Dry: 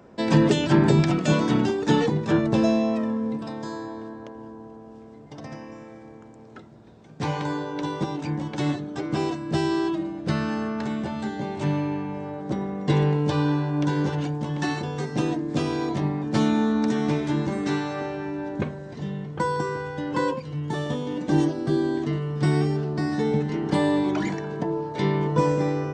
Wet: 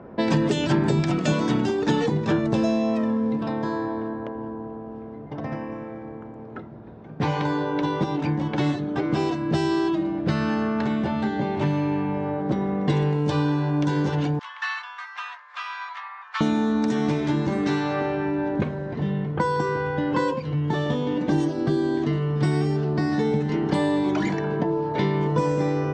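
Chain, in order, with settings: 14.39–16.41 elliptic high-pass 1100 Hz, stop band 70 dB; low-pass opened by the level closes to 1600 Hz, open at -17 dBFS; compressor 3:1, threshold -29 dBFS, peak gain reduction 12 dB; gain +7.5 dB

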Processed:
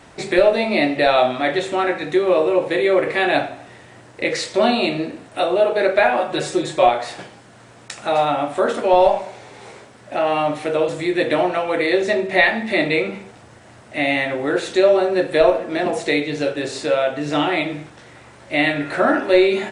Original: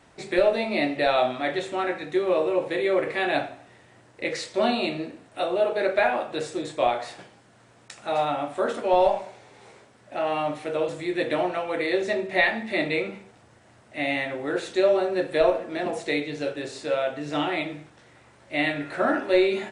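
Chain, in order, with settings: 6.17–6.89 comb 5.4 ms, depth 68%; in parallel at -1.5 dB: compressor, threshold -33 dBFS, peak gain reduction 17 dB; on the sum: gain +5 dB

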